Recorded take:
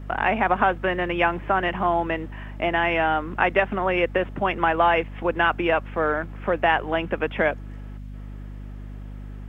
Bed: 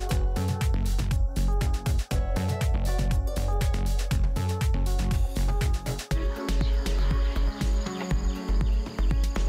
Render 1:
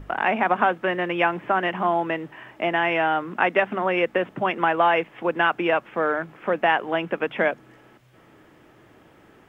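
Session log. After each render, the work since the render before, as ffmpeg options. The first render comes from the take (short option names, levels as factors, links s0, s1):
-af "bandreject=f=50:t=h:w=6,bandreject=f=100:t=h:w=6,bandreject=f=150:t=h:w=6,bandreject=f=200:t=h:w=6,bandreject=f=250:t=h:w=6"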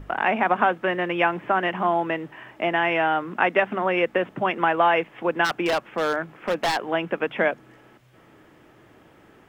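-filter_complex "[0:a]asplit=3[s0][s1][s2];[s0]afade=t=out:st=5.44:d=0.02[s3];[s1]aeval=exprs='0.15*(abs(mod(val(0)/0.15+3,4)-2)-1)':c=same,afade=t=in:st=5.44:d=0.02,afade=t=out:st=6.89:d=0.02[s4];[s2]afade=t=in:st=6.89:d=0.02[s5];[s3][s4][s5]amix=inputs=3:normalize=0"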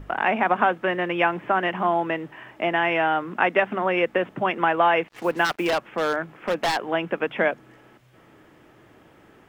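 -filter_complex "[0:a]asettb=1/sr,asplit=3[s0][s1][s2];[s0]atrim=end=5.084[s3];[s1]atrim=start=5.08:end=5.7,asetpts=PTS-STARTPTS,afade=t=in:d=0.004:c=qsin,afade=t=out:st=0.616:d=0.004:c=qsin,acrusher=bits=6:mix=0:aa=0.5[s4];[s2]atrim=start=5.696[s5];[s3][s4]acrossfade=d=0.004:c1=hsin:c2=qsin[s6];[s6][s5]acrossfade=d=0.004:c1=qsin:c2=hsin"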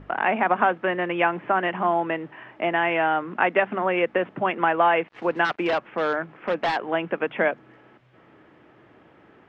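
-af "lowpass=3000,lowshelf=f=64:g=-11"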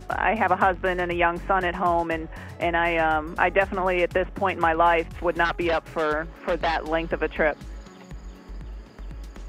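-filter_complex "[1:a]volume=0.211[s0];[0:a][s0]amix=inputs=2:normalize=0"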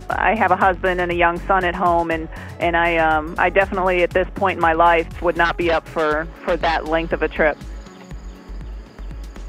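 -af "volume=1.88,alimiter=limit=0.794:level=0:latency=1"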